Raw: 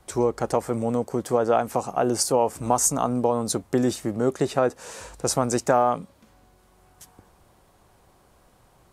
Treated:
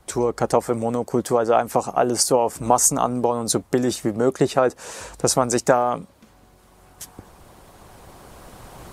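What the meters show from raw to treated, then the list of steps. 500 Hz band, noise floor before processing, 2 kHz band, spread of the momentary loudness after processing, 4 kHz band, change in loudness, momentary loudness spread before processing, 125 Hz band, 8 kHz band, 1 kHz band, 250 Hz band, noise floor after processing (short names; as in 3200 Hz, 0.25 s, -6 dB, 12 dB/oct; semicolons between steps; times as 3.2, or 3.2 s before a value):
+3.0 dB, -59 dBFS, +4.0 dB, 11 LU, +5.0 dB, +3.0 dB, 6 LU, +1.5 dB, +4.5 dB, +3.0 dB, +2.0 dB, -54 dBFS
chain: recorder AGC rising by 5 dB/s; harmonic-percussive split percussive +6 dB; gain -1 dB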